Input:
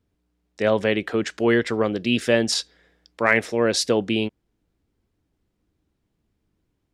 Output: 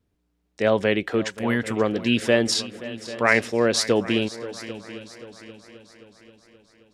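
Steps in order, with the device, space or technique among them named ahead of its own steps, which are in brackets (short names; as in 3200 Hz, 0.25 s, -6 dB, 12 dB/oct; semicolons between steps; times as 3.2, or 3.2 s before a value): 1.32–1.77 EQ curve 260 Hz 0 dB, 380 Hz -14 dB, 860 Hz 0 dB, 4800 Hz -7 dB, 10000 Hz +9 dB; multi-head tape echo (multi-head echo 0.264 s, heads second and third, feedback 47%, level -17 dB; wow and flutter 25 cents)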